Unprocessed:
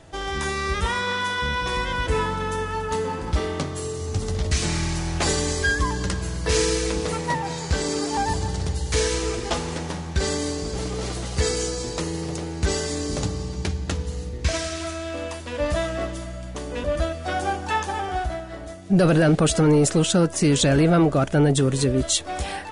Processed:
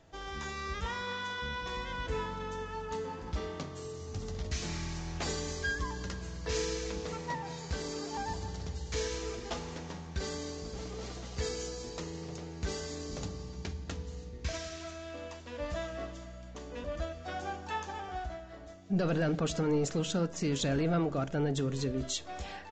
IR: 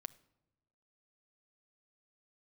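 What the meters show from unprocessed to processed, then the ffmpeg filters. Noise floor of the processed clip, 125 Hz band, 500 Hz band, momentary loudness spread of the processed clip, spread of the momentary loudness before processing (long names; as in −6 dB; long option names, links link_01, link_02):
−46 dBFS, −13.0 dB, −12.0 dB, 11 LU, 11 LU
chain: -filter_complex "[1:a]atrim=start_sample=2205,asetrate=66150,aresample=44100[link_01];[0:a][link_01]afir=irnorm=-1:irlink=0,aresample=16000,aresample=44100,volume=-4.5dB"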